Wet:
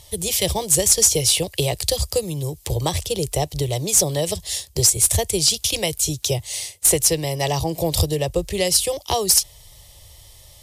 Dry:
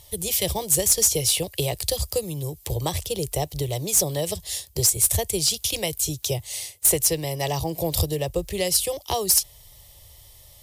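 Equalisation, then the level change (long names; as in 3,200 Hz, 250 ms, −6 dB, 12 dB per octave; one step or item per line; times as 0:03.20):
high-frequency loss of the air 54 metres
high-shelf EQ 6,900 Hz +10 dB
+4.0 dB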